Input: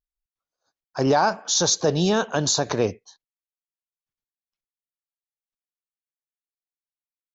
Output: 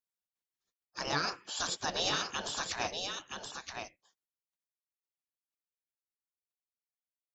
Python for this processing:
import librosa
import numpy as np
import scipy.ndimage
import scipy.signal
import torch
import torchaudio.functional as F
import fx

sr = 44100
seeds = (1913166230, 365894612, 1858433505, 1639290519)

y = fx.spec_gate(x, sr, threshold_db=-15, keep='weak')
y = y + 10.0 ** (-5.5 / 20.0) * np.pad(y, (int(972 * sr / 1000.0), 0))[:len(y)]
y = y * librosa.db_to_amplitude(-1.5)